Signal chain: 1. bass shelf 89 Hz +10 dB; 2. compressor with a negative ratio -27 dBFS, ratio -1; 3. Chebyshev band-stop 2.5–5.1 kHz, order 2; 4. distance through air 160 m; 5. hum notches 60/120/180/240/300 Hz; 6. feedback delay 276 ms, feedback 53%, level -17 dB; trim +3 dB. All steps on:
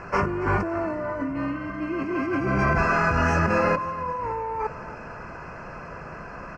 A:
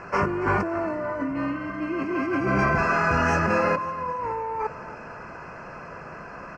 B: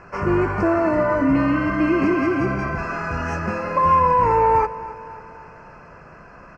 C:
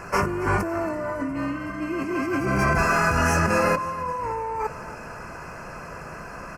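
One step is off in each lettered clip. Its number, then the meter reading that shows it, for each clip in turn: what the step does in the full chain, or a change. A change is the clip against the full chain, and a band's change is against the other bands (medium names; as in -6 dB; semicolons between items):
1, 125 Hz band -2.5 dB; 2, crest factor change -3.0 dB; 4, 4 kHz band +5.5 dB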